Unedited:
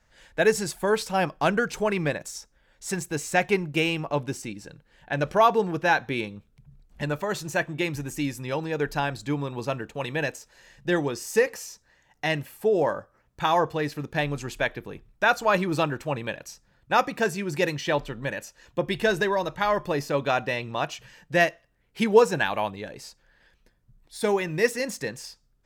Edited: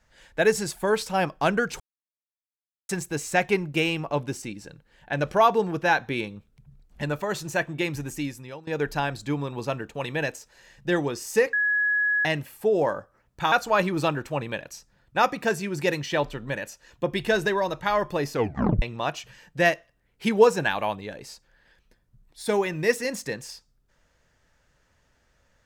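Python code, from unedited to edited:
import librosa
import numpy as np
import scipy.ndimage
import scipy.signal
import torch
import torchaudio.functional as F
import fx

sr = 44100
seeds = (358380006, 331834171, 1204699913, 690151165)

y = fx.edit(x, sr, fx.silence(start_s=1.8, length_s=1.09),
    fx.fade_out_to(start_s=8.09, length_s=0.58, floor_db=-21.5),
    fx.bleep(start_s=11.53, length_s=0.72, hz=1680.0, db=-20.0),
    fx.cut(start_s=13.52, length_s=1.75),
    fx.tape_stop(start_s=20.08, length_s=0.49), tone=tone)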